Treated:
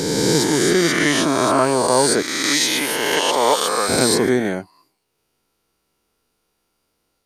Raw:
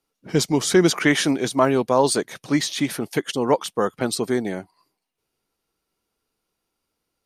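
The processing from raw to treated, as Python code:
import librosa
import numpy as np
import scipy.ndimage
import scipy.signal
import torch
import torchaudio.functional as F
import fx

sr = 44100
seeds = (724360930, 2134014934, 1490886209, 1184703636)

y = fx.spec_swells(x, sr, rise_s=2.29)
y = fx.highpass(y, sr, hz=1000.0, slope=6, at=(2.22, 3.89))
y = fx.rider(y, sr, range_db=4, speed_s=0.5)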